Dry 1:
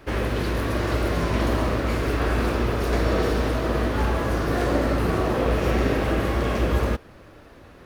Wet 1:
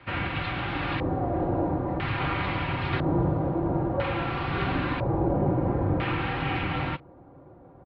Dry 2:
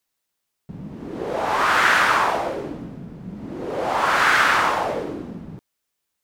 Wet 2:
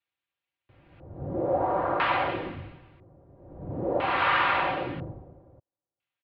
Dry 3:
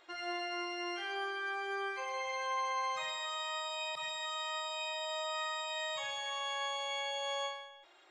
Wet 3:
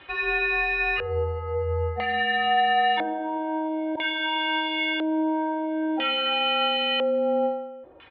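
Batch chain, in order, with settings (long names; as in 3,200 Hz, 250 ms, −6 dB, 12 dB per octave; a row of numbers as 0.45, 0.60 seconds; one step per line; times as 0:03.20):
comb filter 4.7 ms, depth 57%
auto-filter low-pass square 0.5 Hz 880–3,000 Hz
elliptic band-pass filter 390–4,600 Hz, stop band 40 dB
frequency shifter −310 Hz
normalise the peak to −12 dBFS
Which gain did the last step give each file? −3.0, −10.0, +10.0 decibels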